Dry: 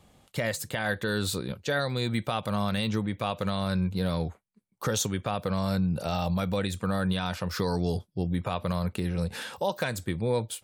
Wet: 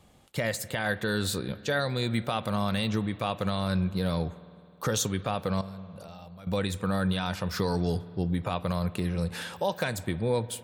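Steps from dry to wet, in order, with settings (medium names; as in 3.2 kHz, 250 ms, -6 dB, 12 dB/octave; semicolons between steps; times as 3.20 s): 5.61–6.47 s: level held to a coarse grid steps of 23 dB; spring tank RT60 2.5 s, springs 52 ms, chirp 25 ms, DRR 16 dB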